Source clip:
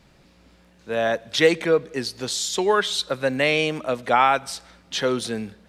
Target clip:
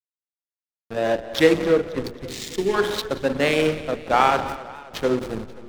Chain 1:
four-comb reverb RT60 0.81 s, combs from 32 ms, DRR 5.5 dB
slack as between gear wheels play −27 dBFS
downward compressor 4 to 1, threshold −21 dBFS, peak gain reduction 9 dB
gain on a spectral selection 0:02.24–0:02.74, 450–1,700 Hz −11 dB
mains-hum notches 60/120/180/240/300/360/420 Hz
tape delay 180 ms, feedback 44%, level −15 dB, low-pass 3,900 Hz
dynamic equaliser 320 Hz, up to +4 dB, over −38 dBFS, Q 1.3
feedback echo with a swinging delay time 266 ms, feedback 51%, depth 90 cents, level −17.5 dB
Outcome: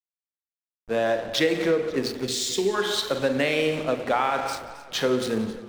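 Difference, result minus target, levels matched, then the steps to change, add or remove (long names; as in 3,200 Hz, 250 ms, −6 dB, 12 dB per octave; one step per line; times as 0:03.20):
downward compressor: peak gain reduction +9 dB; slack as between gear wheels: distortion −9 dB
change: slack as between gear wheels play −17 dBFS
remove: downward compressor 4 to 1, threshold −21 dBFS, peak gain reduction 9 dB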